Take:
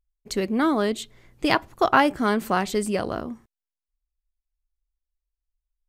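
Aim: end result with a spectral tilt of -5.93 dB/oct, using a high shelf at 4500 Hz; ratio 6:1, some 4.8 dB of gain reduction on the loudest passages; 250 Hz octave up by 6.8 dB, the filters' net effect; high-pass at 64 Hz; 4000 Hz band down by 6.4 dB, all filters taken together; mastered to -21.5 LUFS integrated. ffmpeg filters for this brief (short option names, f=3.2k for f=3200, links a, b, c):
-af "highpass=64,equalizer=f=250:t=o:g=8.5,equalizer=f=4k:t=o:g=-5,highshelf=f=4.5k:g=-7.5,acompressor=threshold=-17dB:ratio=6,volume=2.5dB"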